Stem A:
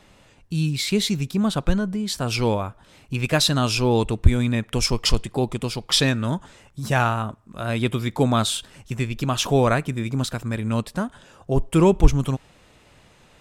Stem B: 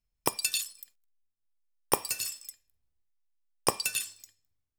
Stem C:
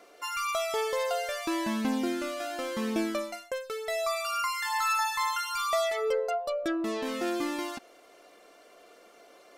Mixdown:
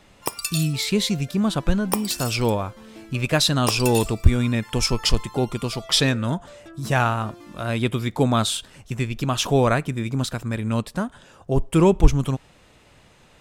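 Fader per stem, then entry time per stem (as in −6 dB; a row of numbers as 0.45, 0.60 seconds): 0.0, +1.5, −14.0 decibels; 0.00, 0.00, 0.00 seconds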